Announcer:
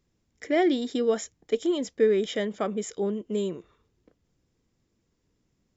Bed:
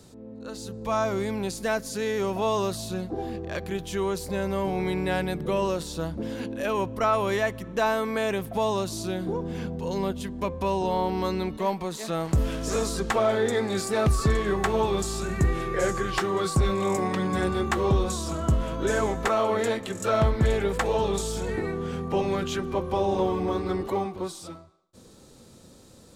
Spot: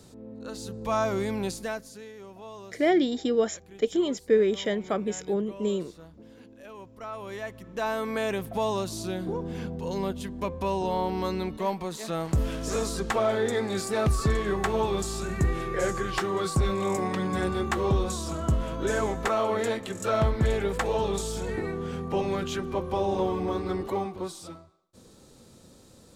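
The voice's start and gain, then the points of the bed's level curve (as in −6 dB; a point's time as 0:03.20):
2.30 s, +0.5 dB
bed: 0:01.49 −0.5 dB
0:02.13 −18 dB
0:06.85 −18 dB
0:08.11 −2 dB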